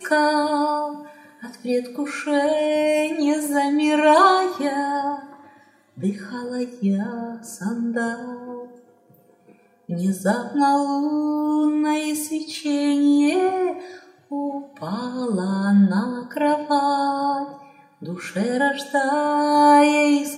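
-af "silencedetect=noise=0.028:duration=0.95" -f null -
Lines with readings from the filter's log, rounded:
silence_start: 8.64
silence_end: 9.89 | silence_duration: 1.25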